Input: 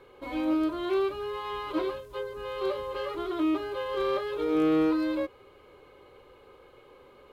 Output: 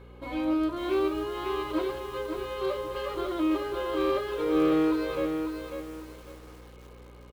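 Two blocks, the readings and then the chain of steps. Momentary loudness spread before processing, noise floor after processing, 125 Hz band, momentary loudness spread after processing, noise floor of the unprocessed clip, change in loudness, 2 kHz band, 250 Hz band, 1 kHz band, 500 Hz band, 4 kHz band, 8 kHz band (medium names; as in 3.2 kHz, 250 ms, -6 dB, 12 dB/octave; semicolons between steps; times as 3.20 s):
11 LU, -49 dBFS, +4.0 dB, 15 LU, -55 dBFS, +0.5 dB, +1.0 dB, +0.5 dB, +1.0 dB, +1.0 dB, +1.0 dB, no reading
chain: hum 60 Hz, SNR 19 dB; feedback delay 79 ms, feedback 55%, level -21 dB; bit-crushed delay 547 ms, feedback 35%, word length 8-bit, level -6 dB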